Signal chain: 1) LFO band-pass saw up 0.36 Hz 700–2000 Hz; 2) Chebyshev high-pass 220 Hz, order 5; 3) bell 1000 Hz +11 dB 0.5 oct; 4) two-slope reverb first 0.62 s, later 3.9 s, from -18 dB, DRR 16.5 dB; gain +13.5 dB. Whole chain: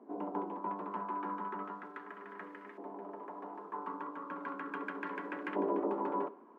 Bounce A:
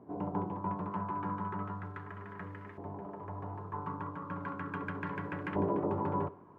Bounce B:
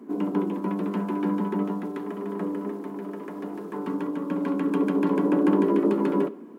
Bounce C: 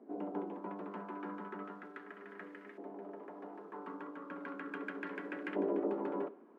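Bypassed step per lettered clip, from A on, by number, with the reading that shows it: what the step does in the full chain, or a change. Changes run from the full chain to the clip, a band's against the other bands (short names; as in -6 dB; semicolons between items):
2, 250 Hz band +2.5 dB; 1, 250 Hz band +14.5 dB; 3, 1 kHz band -7.5 dB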